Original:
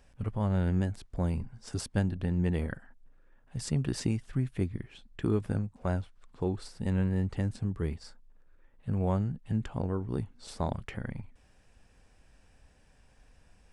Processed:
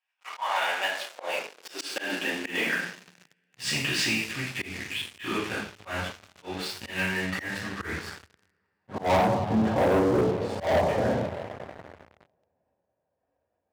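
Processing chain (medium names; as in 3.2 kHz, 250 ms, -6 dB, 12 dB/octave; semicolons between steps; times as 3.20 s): gate -58 dBFS, range -7 dB; band-pass sweep 2.6 kHz -> 580 Hz, 6.93–9.64 s; reverberation, pre-delay 3 ms, DRR -7 dB; waveshaping leveller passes 5; slow attack 150 ms; high-pass sweep 890 Hz -> 79 Hz, 0.46–4.31 s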